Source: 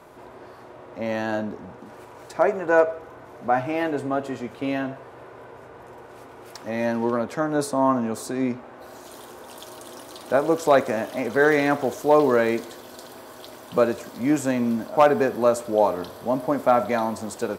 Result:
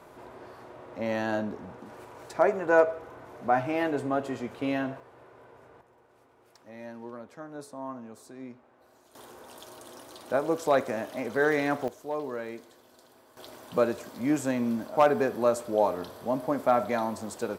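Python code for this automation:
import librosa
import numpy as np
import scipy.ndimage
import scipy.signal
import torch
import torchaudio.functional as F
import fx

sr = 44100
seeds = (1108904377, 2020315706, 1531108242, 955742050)

y = fx.gain(x, sr, db=fx.steps((0.0, -3.0), (5.0, -10.0), (5.81, -18.0), (9.15, -6.5), (11.88, -16.0), (13.37, -5.0)))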